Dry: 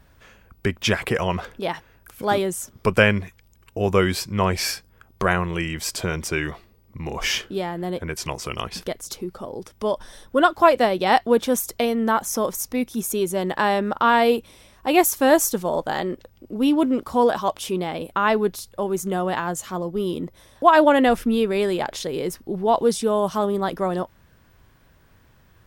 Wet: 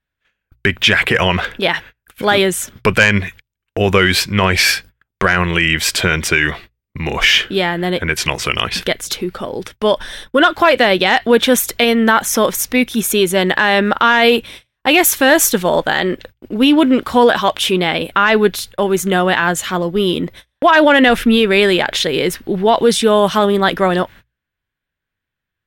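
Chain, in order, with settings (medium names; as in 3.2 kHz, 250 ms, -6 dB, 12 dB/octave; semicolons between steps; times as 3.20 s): gate -44 dBFS, range -37 dB; high-order bell 2.4 kHz +9.5 dB; hum notches 60/120 Hz; in parallel at -8 dB: sine folder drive 5 dB, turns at 3 dBFS; on the sum: loudness maximiser +3.5 dB; trim -1 dB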